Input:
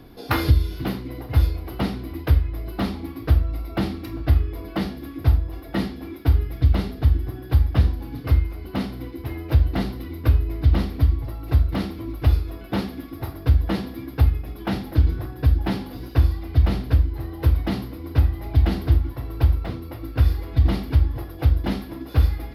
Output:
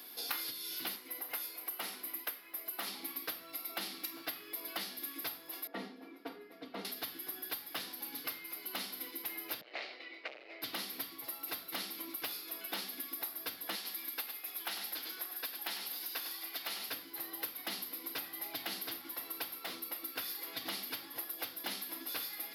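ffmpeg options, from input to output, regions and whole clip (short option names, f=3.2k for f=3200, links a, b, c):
-filter_complex "[0:a]asettb=1/sr,asplit=3[a][b][c];[a]atrim=end=0.964[d];[b]atrim=start=0.96:end=2.87,asetpts=PTS-STARTPTS,afade=t=in:d=0.004:c=qsin,afade=t=out:st=1.906:d=0.004:c=qsin,highpass=f=380:p=1,equalizer=f=4.2k:t=o:w=1.2:g=-6.5[e];[c]atrim=start=2.866[f];[d][e]acrossfade=d=0.004:c1=hsin:c2=qsin[g];[g][f]acrossfade=d=0.004:c1=qsin:c2=hsin,asettb=1/sr,asplit=3[h][i][j];[h]atrim=end=5.674[k];[i]atrim=start=5.67:end=6.85,asetpts=PTS-STARTPTS,afade=t=in:d=0.004:c=qsin,afade=t=out:st=1.176:d=0.004:c=qsin,bandpass=f=370:t=q:w=0.78,aecho=1:1:4.3:0.53,atrim=end_sample=52038[l];[j]atrim=start=6.846[m];[k][l]acrossfade=d=0.004:c1=hsin:c2=qsin[n];[n][m]acrossfade=d=0.004:c1=qsin:c2=hsin,asettb=1/sr,asplit=3[o][p][q];[o]atrim=end=9.614[r];[p]atrim=start=9.61:end=10.62,asetpts=PTS-STARTPTS,afade=t=in:d=0.004:c=qsin,afade=t=out:st=1.006:d=0.004:c=qsin,volume=24.5dB,asoftclip=hard,volume=-24.5dB,highpass=f=380:w=0.5412,highpass=f=380:w=1.3066,equalizer=f=410:t=q:w=4:g=-3,equalizer=f=600:t=q:w=4:g=6,equalizer=f=1k:t=q:w=4:g=-9,equalizer=f=1.5k:t=q:w=4:g=-5,equalizer=f=2.2k:t=q:w=4:g=5,equalizer=f=3.4k:t=q:w=4:g=-7,lowpass=f=3.7k:w=0.5412,lowpass=f=3.7k:w=1.3066[s];[q]atrim=start=10.616[t];[r][s]acrossfade=d=0.004:c1=hsin:c2=qsin[u];[u][t]acrossfade=d=0.004:c1=qsin:c2=hsin,asettb=1/sr,asplit=3[v][w][x];[v]atrim=end=13.754[y];[w]atrim=start=13.75:end=16.91,asetpts=PTS-STARTPTS,afade=t=in:d=0.004:c=qsin,afade=t=out:st=3.156:d=0.004:c=qsin,highpass=f=620:p=1,aecho=1:1:99:0.398,atrim=end_sample=139356[z];[x]atrim=start=16.906[aa];[y][z]acrossfade=d=0.004:c1=hsin:c2=qsin[ab];[ab][aa]acrossfade=d=0.004:c1=qsin:c2=hsin,highpass=f=180:w=0.5412,highpass=f=180:w=1.3066,aderivative,acompressor=threshold=-48dB:ratio=6,volume=11dB"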